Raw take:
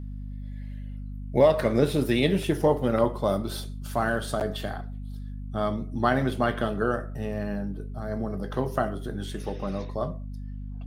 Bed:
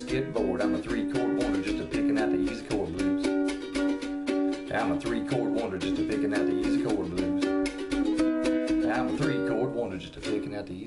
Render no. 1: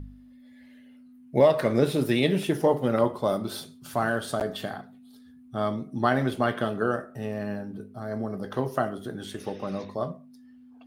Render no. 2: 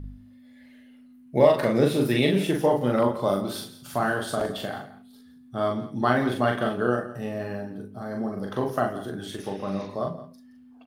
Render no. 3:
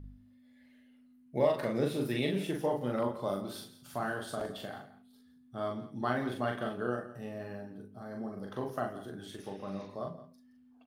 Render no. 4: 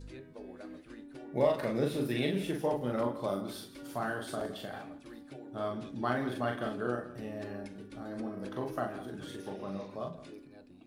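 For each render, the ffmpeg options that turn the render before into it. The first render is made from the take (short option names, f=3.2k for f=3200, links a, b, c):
-af "bandreject=f=50:t=h:w=4,bandreject=f=100:t=h:w=4,bandreject=f=150:t=h:w=4,bandreject=f=200:t=h:w=4"
-filter_complex "[0:a]asplit=2[a][b];[b]adelay=41,volume=-3dB[c];[a][c]amix=inputs=2:normalize=0,aecho=1:1:170:0.168"
-af "volume=-10dB"
-filter_complex "[1:a]volume=-20dB[a];[0:a][a]amix=inputs=2:normalize=0"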